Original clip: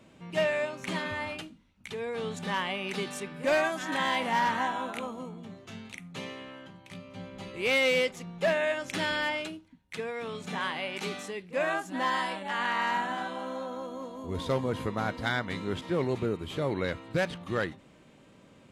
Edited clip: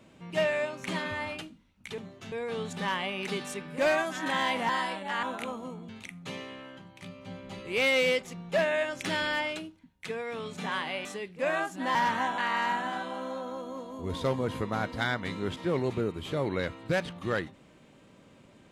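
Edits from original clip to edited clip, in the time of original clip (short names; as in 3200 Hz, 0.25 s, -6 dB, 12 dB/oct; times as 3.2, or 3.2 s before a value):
4.35–4.78 swap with 12.09–12.63
5.44–5.78 move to 1.98
10.94–11.19 cut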